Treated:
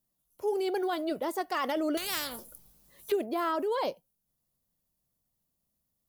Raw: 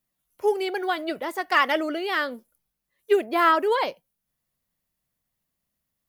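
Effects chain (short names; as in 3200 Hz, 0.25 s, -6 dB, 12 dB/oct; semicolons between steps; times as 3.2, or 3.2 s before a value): bell 2000 Hz -11 dB 1.6 oct; in parallel at +1 dB: negative-ratio compressor -29 dBFS, ratio -0.5; 1.97–3.12 on the sum: spectral compressor 4:1; gain -8 dB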